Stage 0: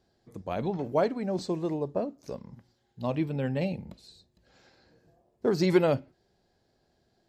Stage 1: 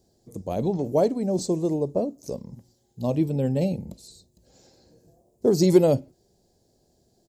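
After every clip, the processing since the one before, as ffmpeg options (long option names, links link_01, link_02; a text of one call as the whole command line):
ffmpeg -i in.wav -af "firequalizer=gain_entry='entry(510,0);entry(1400,-16);entry(6700,8)':delay=0.05:min_phase=1,volume=6dB" out.wav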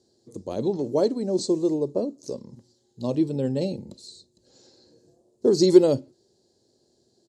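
ffmpeg -i in.wav -af "highpass=130,equalizer=frequency=170:width_type=q:width=4:gain=-7,equalizer=frequency=360:width_type=q:width=4:gain=4,equalizer=frequency=710:width_type=q:width=4:gain=-7,equalizer=frequency=2300:width_type=q:width=4:gain=-6,equalizer=frequency=4200:width_type=q:width=4:gain=7,lowpass=frequency=9300:width=0.5412,lowpass=frequency=9300:width=1.3066" out.wav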